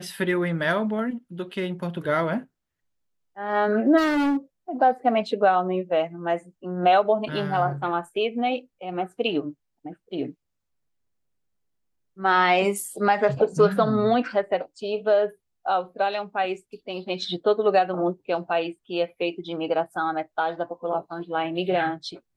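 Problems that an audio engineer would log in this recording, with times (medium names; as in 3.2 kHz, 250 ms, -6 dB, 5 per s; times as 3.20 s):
3.97–4.37 s: clipped -20 dBFS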